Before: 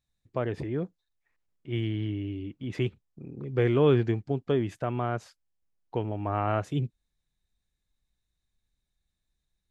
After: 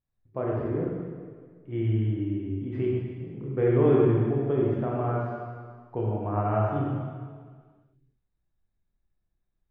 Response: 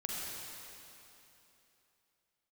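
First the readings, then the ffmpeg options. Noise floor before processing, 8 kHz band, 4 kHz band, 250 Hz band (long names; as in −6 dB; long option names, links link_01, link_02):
−82 dBFS, can't be measured, below −10 dB, +3.0 dB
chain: -filter_complex "[0:a]lowpass=1400[link_01];[1:a]atrim=start_sample=2205,asetrate=79380,aresample=44100[link_02];[link_01][link_02]afir=irnorm=-1:irlink=0,volume=5dB"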